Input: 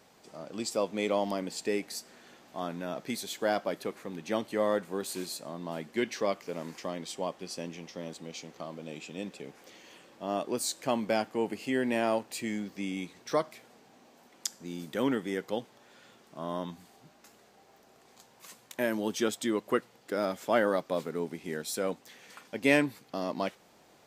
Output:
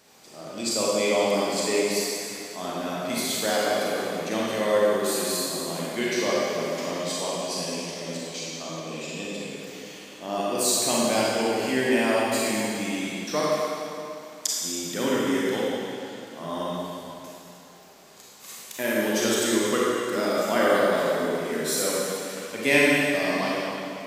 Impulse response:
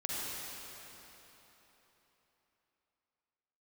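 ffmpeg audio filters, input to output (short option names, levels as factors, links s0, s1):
-filter_complex "[0:a]highshelf=f=2300:g=8[s0];[1:a]atrim=start_sample=2205,asetrate=61740,aresample=44100[s1];[s0][s1]afir=irnorm=-1:irlink=0,volume=1.68"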